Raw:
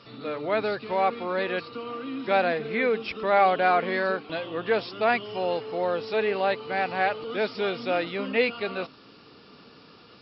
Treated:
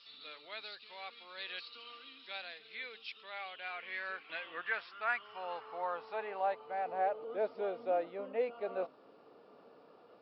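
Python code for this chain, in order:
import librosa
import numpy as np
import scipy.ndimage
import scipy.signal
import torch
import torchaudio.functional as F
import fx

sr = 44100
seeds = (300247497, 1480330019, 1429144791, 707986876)

y = fx.peak_eq(x, sr, hz=330.0, db=-7.0, octaves=2.4, at=(4.61, 6.86))
y = fx.rider(y, sr, range_db=5, speed_s=0.5)
y = fx.filter_sweep_bandpass(y, sr, from_hz=3800.0, to_hz=620.0, start_s=3.01, end_s=6.91, q=2.2)
y = y * librosa.db_to_amplitude(-4.5)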